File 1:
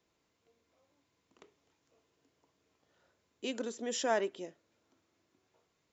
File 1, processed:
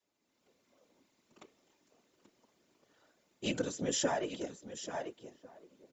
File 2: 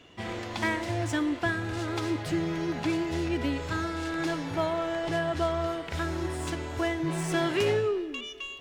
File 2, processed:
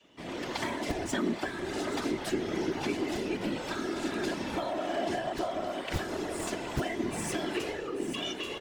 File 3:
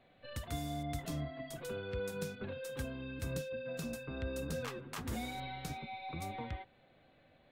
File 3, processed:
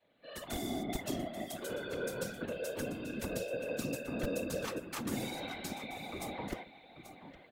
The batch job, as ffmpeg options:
ffmpeg -i in.wav -filter_complex "[0:a]adynamicequalizer=threshold=0.00631:dfrequency=260:dqfactor=1.2:tfrequency=260:tqfactor=1.2:attack=5:release=100:ratio=0.375:range=2.5:mode=cutabove:tftype=bell,highpass=frequency=55:width=0.5412,highpass=frequency=55:width=1.3066,asplit=2[link_01][link_02];[link_02]aecho=0:1:835:0.237[link_03];[link_01][link_03]amix=inputs=2:normalize=0,acompressor=threshold=-32dB:ratio=12,asplit=2[link_04][link_05];[link_05]adelay=1399,volume=-22dB,highshelf=frequency=4000:gain=-31.5[link_06];[link_04][link_06]amix=inputs=2:normalize=0,acrossover=split=130[link_07][link_08];[link_07]acrusher=bits=5:mix=0:aa=0.000001[link_09];[link_09][link_08]amix=inputs=2:normalize=0,aecho=1:1:3.4:0.47,afftfilt=real='hypot(re,im)*cos(2*PI*random(0))':imag='hypot(re,im)*sin(2*PI*random(1))':win_size=512:overlap=0.75,equalizer=frequency=1400:width=0.33:gain=-3.5,dynaudnorm=framelen=140:gausssize=5:maxgain=10dB,volume=1dB" out.wav

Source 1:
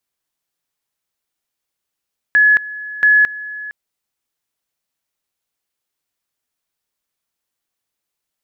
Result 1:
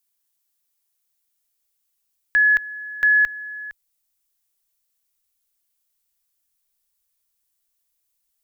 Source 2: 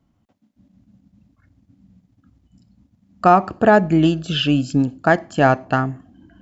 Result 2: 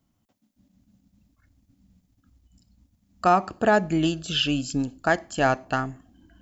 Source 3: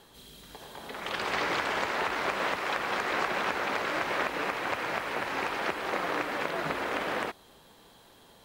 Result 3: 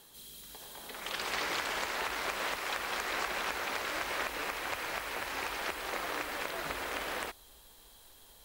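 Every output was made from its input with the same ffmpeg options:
ffmpeg -i in.wav -af "crystalizer=i=3:c=0,asubboost=boost=9.5:cutoff=50,volume=-7dB" out.wav

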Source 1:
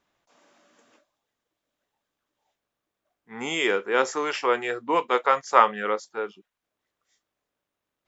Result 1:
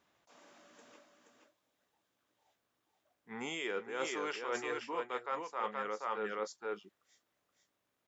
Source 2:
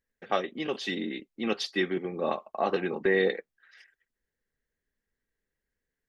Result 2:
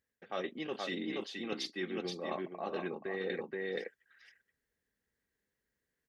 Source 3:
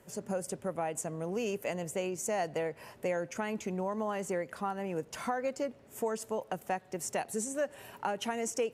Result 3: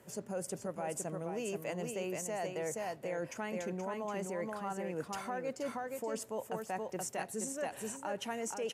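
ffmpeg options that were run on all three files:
ffmpeg -i in.wav -af "aecho=1:1:476:0.531,areverse,acompressor=threshold=-34dB:ratio=12,areverse,highpass=64" out.wav

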